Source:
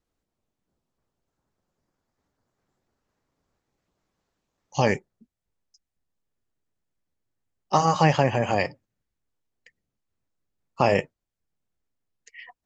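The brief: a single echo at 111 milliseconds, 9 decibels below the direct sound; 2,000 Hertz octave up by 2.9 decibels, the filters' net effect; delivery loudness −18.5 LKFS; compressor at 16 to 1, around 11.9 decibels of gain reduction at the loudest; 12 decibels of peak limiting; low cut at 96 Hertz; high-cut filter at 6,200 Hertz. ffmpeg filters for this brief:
ffmpeg -i in.wav -af "highpass=96,lowpass=6200,equalizer=frequency=2000:width_type=o:gain=3.5,acompressor=threshold=-26dB:ratio=16,alimiter=level_in=1.5dB:limit=-24dB:level=0:latency=1,volume=-1.5dB,aecho=1:1:111:0.355,volume=20dB" out.wav

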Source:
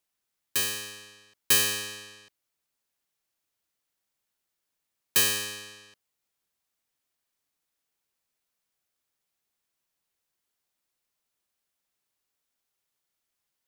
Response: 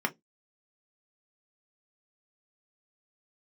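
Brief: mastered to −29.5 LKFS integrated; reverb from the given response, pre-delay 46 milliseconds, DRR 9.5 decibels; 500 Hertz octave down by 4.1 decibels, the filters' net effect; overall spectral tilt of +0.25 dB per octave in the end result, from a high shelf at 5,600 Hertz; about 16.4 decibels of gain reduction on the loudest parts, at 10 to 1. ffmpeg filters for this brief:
-filter_complex "[0:a]equalizer=frequency=500:width_type=o:gain=-5,highshelf=frequency=5600:gain=4.5,acompressor=threshold=-31dB:ratio=10,asplit=2[link_01][link_02];[1:a]atrim=start_sample=2205,adelay=46[link_03];[link_02][link_03]afir=irnorm=-1:irlink=0,volume=-18dB[link_04];[link_01][link_04]amix=inputs=2:normalize=0,volume=6dB"

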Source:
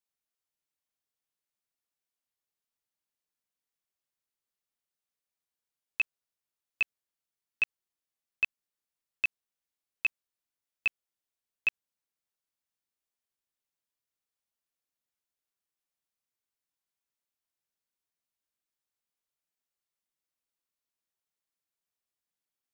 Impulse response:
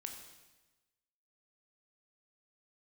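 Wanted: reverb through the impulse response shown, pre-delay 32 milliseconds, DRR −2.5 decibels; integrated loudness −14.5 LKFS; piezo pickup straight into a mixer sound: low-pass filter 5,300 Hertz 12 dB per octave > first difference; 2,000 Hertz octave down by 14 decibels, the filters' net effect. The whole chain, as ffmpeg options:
-filter_complex "[0:a]equalizer=frequency=2000:width_type=o:gain=-8,asplit=2[link_01][link_02];[1:a]atrim=start_sample=2205,adelay=32[link_03];[link_02][link_03]afir=irnorm=-1:irlink=0,volume=5.5dB[link_04];[link_01][link_04]amix=inputs=2:normalize=0,lowpass=5300,aderivative,volume=29.5dB"

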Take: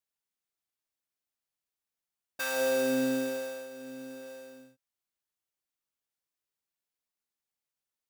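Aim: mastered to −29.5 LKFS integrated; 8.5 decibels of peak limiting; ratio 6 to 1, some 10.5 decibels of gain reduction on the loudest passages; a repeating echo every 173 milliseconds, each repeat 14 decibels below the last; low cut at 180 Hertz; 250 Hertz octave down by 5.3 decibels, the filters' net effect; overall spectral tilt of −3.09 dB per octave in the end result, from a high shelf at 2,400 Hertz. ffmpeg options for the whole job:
ffmpeg -i in.wav -af "highpass=180,equalizer=frequency=250:width_type=o:gain=-4.5,highshelf=frequency=2400:gain=-4.5,acompressor=threshold=-38dB:ratio=6,alimiter=level_in=13dB:limit=-24dB:level=0:latency=1,volume=-13dB,aecho=1:1:173|346:0.2|0.0399,volume=15dB" out.wav

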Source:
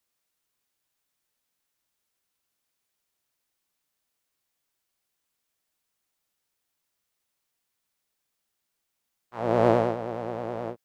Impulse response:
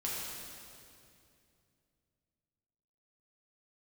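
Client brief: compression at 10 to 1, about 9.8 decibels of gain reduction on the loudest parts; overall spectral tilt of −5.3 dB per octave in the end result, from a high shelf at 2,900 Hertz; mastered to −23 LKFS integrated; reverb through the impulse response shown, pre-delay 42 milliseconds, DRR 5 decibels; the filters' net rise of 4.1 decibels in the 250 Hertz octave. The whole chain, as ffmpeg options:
-filter_complex "[0:a]equalizer=frequency=250:width_type=o:gain=5.5,highshelf=frequency=2900:gain=-3.5,acompressor=threshold=-22dB:ratio=10,asplit=2[link_01][link_02];[1:a]atrim=start_sample=2205,adelay=42[link_03];[link_02][link_03]afir=irnorm=-1:irlink=0,volume=-9dB[link_04];[link_01][link_04]amix=inputs=2:normalize=0,volume=6.5dB"

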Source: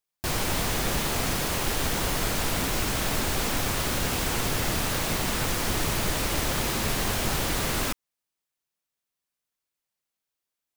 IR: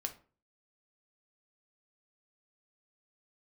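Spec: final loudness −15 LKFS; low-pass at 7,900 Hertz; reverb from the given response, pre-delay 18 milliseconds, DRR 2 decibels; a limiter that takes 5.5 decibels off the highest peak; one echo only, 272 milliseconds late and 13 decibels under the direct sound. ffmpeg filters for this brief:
-filter_complex "[0:a]lowpass=7900,alimiter=limit=-19.5dB:level=0:latency=1,aecho=1:1:272:0.224,asplit=2[link_01][link_02];[1:a]atrim=start_sample=2205,adelay=18[link_03];[link_02][link_03]afir=irnorm=-1:irlink=0,volume=-1.5dB[link_04];[link_01][link_04]amix=inputs=2:normalize=0,volume=12.5dB"

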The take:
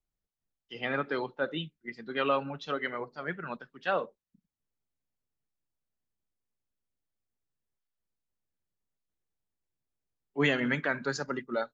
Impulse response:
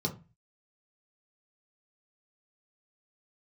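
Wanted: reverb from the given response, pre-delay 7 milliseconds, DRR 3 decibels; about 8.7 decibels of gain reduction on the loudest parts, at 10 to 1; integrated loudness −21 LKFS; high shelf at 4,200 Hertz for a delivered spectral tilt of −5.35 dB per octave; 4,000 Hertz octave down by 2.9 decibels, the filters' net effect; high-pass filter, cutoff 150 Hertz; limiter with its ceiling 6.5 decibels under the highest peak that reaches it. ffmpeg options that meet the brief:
-filter_complex "[0:a]highpass=150,equalizer=frequency=4000:width_type=o:gain=-6.5,highshelf=frequency=4200:gain=4.5,acompressor=threshold=-31dB:ratio=10,alimiter=level_in=4.5dB:limit=-24dB:level=0:latency=1,volume=-4.5dB,asplit=2[link_01][link_02];[1:a]atrim=start_sample=2205,adelay=7[link_03];[link_02][link_03]afir=irnorm=-1:irlink=0,volume=-7.5dB[link_04];[link_01][link_04]amix=inputs=2:normalize=0,volume=15dB"

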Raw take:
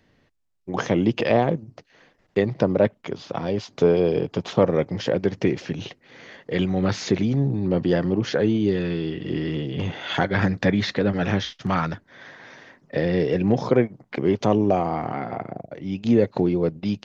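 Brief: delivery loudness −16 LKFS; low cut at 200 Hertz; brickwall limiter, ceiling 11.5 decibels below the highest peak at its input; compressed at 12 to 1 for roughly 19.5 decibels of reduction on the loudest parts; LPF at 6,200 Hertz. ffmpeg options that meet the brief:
ffmpeg -i in.wav -af "highpass=200,lowpass=6200,acompressor=threshold=-34dB:ratio=12,volume=26.5dB,alimiter=limit=-5.5dB:level=0:latency=1" out.wav

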